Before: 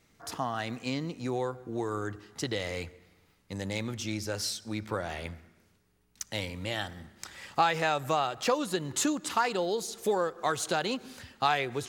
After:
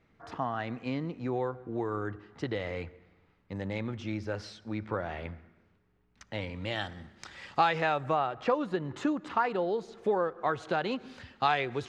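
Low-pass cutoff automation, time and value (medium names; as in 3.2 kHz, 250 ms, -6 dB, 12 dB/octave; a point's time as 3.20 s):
6.39 s 2.2 kHz
6.82 s 4.6 kHz
7.56 s 4.6 kHz
8.18 s 1.9 kHz
10.57 s 1.9 kHz
11.15 s 3.7 kHz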